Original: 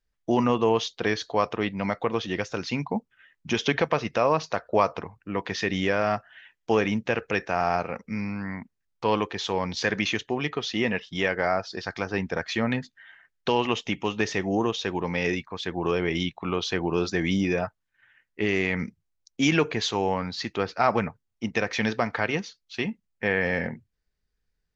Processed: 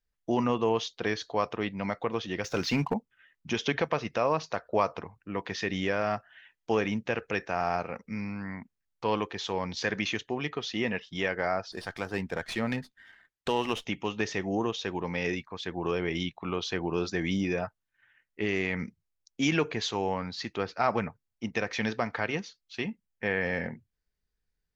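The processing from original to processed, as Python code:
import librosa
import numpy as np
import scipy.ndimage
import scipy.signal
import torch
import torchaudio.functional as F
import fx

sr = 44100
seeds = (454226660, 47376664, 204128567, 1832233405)

y = fx.leveller(x, sr, passes=2, at=(2.44, 2.94))
y = fx.running_max(y, sr, window=3, at=(11.72, 13.85))
y = y * 10.0 ** (-4.5 / 20.0)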